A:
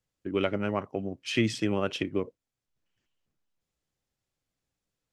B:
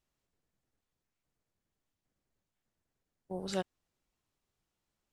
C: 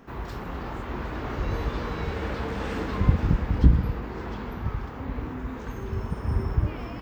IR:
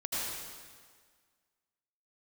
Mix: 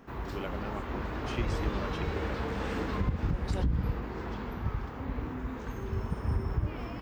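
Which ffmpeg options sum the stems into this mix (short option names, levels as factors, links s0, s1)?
-filter_complex "[0:a]volume=0.266[s0];[1:a]volume=0.668[s1];[2:a]volume=0.708[s2];[s0][s1][s2]amix=inputs=3:normalize=0,alimiter=limit=0.112:level=0:latency=1:release=203"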